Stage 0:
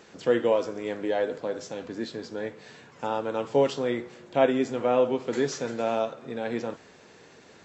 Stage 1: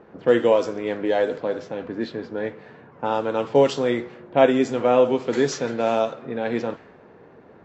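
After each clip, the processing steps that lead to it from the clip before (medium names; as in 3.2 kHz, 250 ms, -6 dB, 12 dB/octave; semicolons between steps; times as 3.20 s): level-controlled noise filter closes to 1 kHz, open at -21 dBFS; trim +5.5 dB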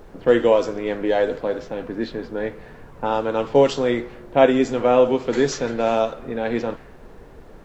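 added noise brown -45 dBFS; trim +1.5 dB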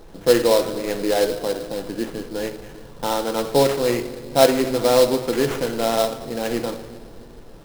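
simulated room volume 2100 m³, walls mixed, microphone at 0.72 m; sample-rate reducer 4.6 kHz, jitter 20%; trim -1 dB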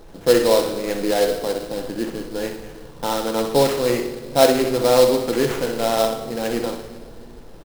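feedback delay 63 ms, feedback 45%, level -8.5 dB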